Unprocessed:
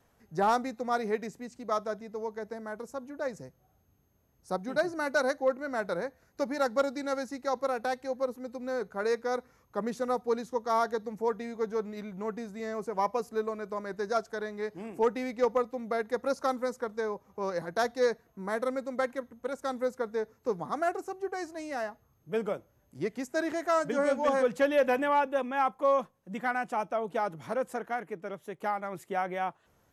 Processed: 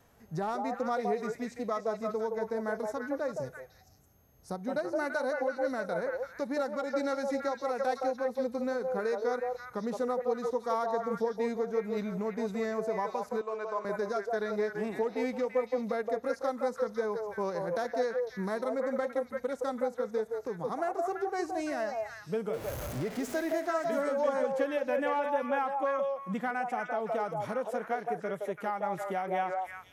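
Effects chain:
0:22.53–0:23.53: converter with a step at zero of −38 dBFS
downward compressor 6 to 1, threshold −36 dBFS, peak gain reduction 14.5 dB
on a send: echo through a band-pass that steps 168 ms, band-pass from 640 Hz, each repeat 1.4 octaves, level 0 dB
on the sum: harmonic and percussive parts rebalanced harmonic +7 dB
0:13.41–0:13.85: loudspeaker in its box 480–7,700 Hz, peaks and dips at 980 Hz +4 dB, 1,900 Hz −5 dB, 2,800 Hz +6 dB, 5,200 Hz −5 dB

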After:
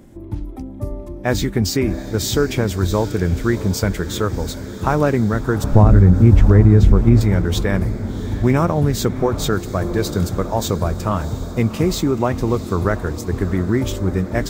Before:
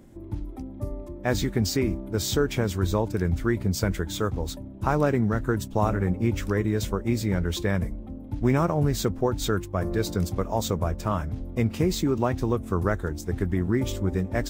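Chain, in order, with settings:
0:05.64–0:07.21: RIAA equalisation playback
feedback delay with all-pass diffusion 706 ms, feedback 64%, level −14 dB
boost into a limiter +7 dB
level −1 dB

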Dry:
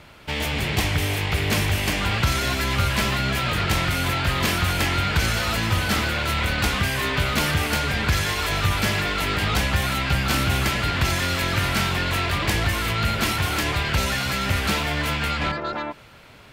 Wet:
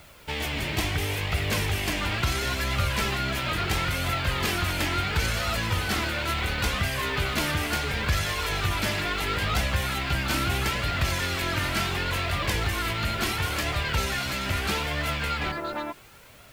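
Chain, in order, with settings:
background noise white −53 dBFS
flanger 0.73 Hz, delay 1.4 ms, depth 2 ms, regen +53%

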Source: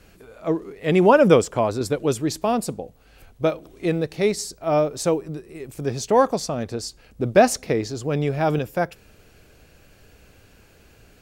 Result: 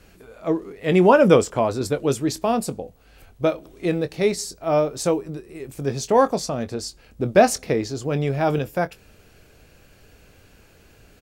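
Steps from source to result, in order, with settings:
double-tracking delay 22 ms −12 dB

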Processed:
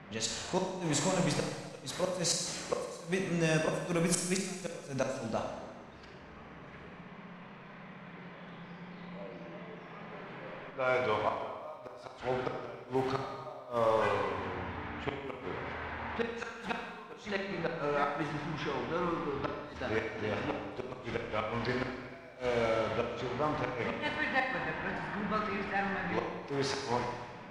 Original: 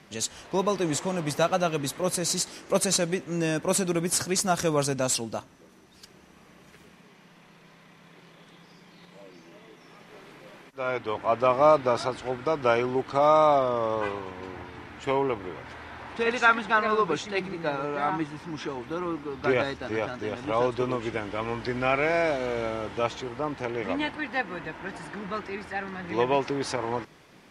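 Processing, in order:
mu-law and A-law mismatch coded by mu
low-pass that shuts in the quiet parts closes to 1,900 Hz, open at −19.5 dBFS
parametric band 330 Hz −6 dB 0.56 octaves
gate with flip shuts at −16 dBFS, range −27 dB
four-comb reverb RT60 1.3 s, combs from 30 ms, DRR 1.5 dB
level −2.5 dB

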